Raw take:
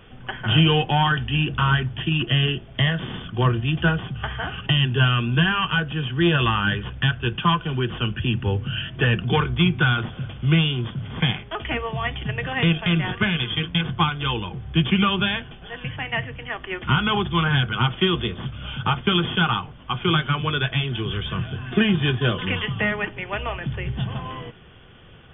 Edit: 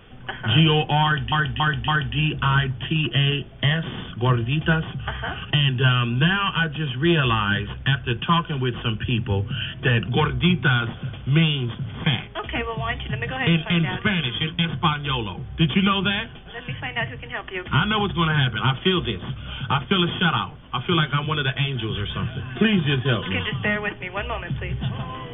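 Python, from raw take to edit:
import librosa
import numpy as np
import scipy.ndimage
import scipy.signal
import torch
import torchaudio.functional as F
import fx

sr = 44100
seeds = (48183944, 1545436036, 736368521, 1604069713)

y = fx.edit(x, sr, fx.repeat(start_s=1.04, length_s=0.28, count=4), tone=tone)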